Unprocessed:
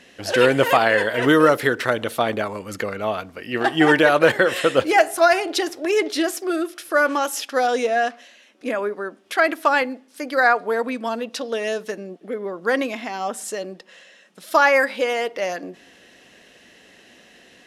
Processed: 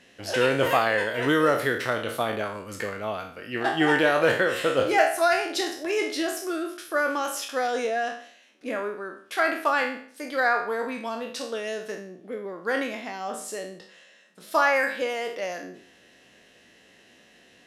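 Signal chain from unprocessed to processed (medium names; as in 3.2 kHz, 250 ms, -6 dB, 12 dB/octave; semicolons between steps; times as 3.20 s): spectral sustain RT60 0.52 s; peaking EQ 110 Hz +3 dB 0.97 oct; trim -7.5 dB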